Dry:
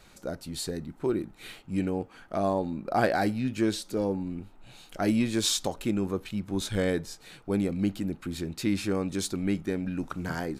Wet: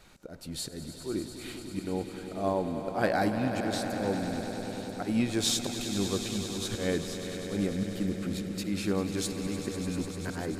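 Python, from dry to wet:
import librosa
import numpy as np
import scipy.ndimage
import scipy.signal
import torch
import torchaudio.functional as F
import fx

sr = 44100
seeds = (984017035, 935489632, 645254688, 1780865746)

y = fx.auto_swell(x, sr, attack_ms=139.0)
y = fx.echo_swell(y, sr, ms=99, loudest=5, wet_db=-12.5)
y = y * 10.0 ** (-1.5 / 20.0)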